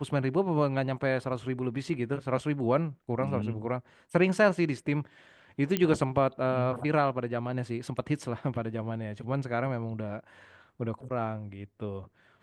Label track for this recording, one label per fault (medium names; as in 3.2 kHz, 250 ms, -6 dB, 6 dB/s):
5.770000	5.770000	pop -12 dBFS